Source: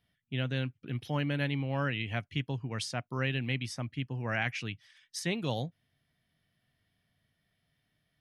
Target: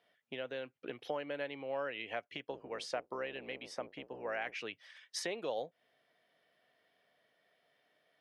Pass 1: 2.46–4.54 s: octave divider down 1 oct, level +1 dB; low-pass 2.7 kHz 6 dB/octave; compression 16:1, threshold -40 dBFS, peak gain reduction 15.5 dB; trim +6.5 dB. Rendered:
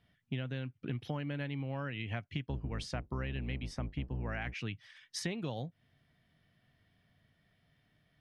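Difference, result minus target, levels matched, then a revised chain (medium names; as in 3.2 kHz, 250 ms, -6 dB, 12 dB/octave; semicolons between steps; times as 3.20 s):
500 Hz band -7.5 dB
2.46–4.54 s: octave divider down 1 oct, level +1 dB; low-pass 2.7 kHz 6 dB/octave; compression 16:1, threshold -40 dBFS, peak gain reduction 15.5 dB; resonant high-pass 500 Hz, resonance Q 2.2; trim +6.5 dB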